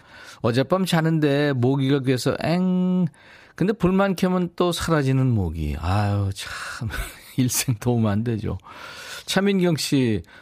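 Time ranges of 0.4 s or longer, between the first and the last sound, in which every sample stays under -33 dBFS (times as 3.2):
3.08–3.58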